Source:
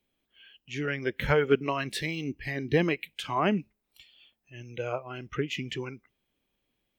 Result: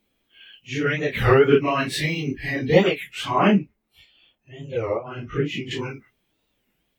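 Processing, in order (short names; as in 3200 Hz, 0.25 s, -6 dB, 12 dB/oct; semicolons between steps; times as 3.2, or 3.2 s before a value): phase scrambler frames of 0.1 s; 3.58–5.71 high shelf 2300 Hz -9.5 dB; record warp 33 1/3 rpm, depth 250 cents; gain +7.5 dB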